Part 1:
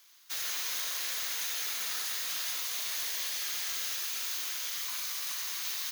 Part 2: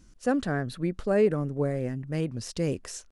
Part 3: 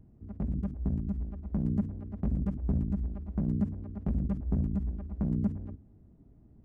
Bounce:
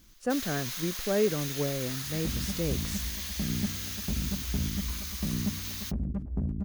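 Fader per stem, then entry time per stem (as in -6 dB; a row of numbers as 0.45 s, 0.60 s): -3.0 dB, -3.5 dB, -2.0 dB; 0.00 s, 0.00 s, 1.85 s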